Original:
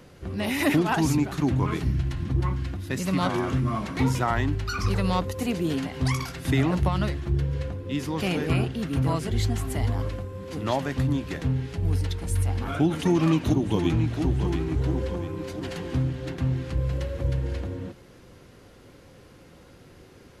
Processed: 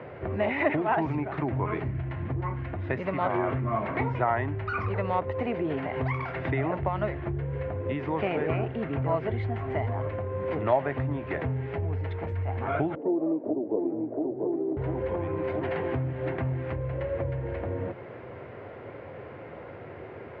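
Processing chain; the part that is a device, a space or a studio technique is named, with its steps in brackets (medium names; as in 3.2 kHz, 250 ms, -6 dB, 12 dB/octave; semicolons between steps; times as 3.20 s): 12.95–14.77 s: Chebyshev band-pass 270–580 Hz, order 2; bass amplifier (compression 3:1, threshold -36 dBFS, peak gain reduction 14 dB; cabinet simulation 86–2300 Hz, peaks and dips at 180 Hz -9 dB, 270 Hz -5 dB, 420 Hz +4 dB, 640 Hz +9 dB, 910 Hz +4 dB, 2.1 kHz +4 dB); trim +8 dB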